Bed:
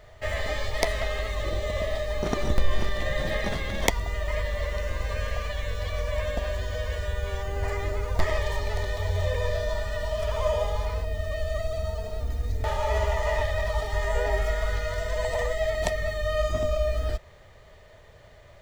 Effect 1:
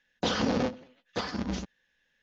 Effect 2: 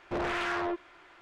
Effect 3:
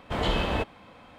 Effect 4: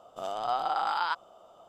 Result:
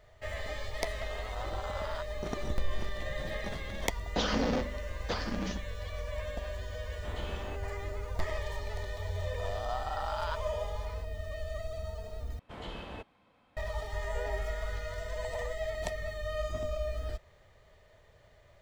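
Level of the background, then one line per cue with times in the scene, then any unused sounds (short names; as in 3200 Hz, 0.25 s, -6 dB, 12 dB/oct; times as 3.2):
bed -9 dB
0.88 add 4 -9 dB + AM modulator 230 Hz, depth 100%
3.93 add 1 -2.5 dB + notches 50/100/150/200/250/300/350/400 Hz
6.93 add 3 -16 dB
9.21 add 4 -8 dB
12.39 replace with 3 -16 dB
not used: 2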